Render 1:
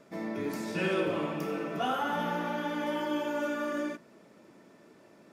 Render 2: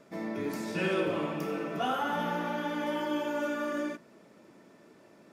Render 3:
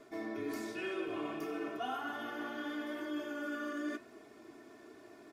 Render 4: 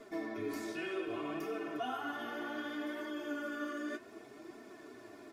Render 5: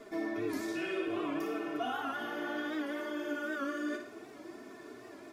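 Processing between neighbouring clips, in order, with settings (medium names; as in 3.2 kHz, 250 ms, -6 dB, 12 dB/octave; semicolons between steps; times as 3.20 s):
no audible change
reverse; compression 6:1, threshold -38 dBFS, peak gain reduction 12.5 dB; reverse; flange 0.92 Hz, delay 4.8 ms, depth 6.4 ms, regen -78%; comb 2.8 ms, depth 95%; trim +3 dB
compression 1.5:1, threshold -44 dBFS, peak gain reduction 4 dB; flange 0.65 Hz, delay 4.2 ms, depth 8.5 ms, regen +44%; trim +7 dB
on a send: flutter echo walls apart 9.8 m, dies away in 0.51 s; on the sum: warped record 78 rpm, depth 100 cents; trim +2 dB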